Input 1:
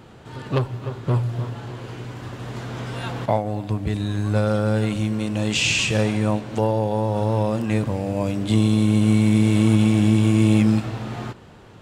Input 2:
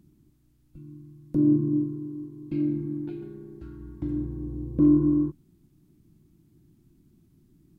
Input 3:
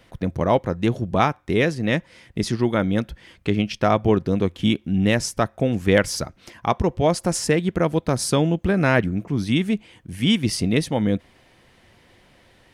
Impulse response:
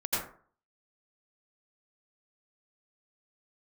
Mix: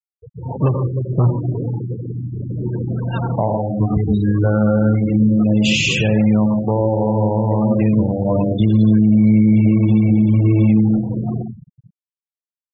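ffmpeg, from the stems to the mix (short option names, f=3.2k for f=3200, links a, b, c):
-filter_complex "[0:a]equalizer=f=150:t=o:w=0.96:g=5,adelay=100,volume=3dB,asplit=2[a][b];[b]volume=-8.5dB[c];[1:a]volume=-11dB,asplit=2[d][e];[e]volume=-13dB[f];[2:a]bandreject=f=60:t=h:w=6,bandreject=f=120:t=h:w=6,bandreject=f=180:t=h:w=6,bandreject=f=240:t=h:w=6,aecho=1:1:2.5:0.62,volume=-14.5dB,asplit=2[g][h];[h]volume=-13.5dB[i];[3:a]atrim=start_sample=2205[j];[c][f][i]amix=inputs=3:normalize=0[k];[k][j]afir=irnorm=-1:irlink=0[l];[a][d][g][l]amix=inputs=4:normalize=0,afftfilt=real='re*gte(hypot(re,im),0.158)':imag='im*gte(hypot(re,im),0.158)':win_size=1024:overlap=0.75,alimiter=limit=-6dB:level=0:latency=1:release=452"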